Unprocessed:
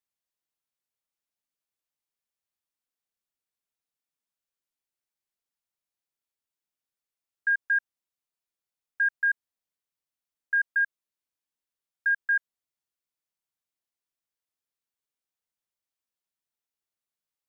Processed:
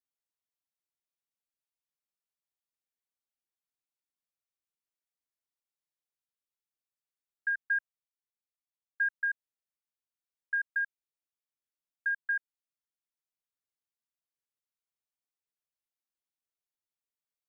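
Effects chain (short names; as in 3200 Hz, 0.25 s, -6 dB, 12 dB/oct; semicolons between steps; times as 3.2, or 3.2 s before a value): transient shaper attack +3 dB, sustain -2 dB; 7.55–9.14 three-band expander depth 40%; gain -8 dB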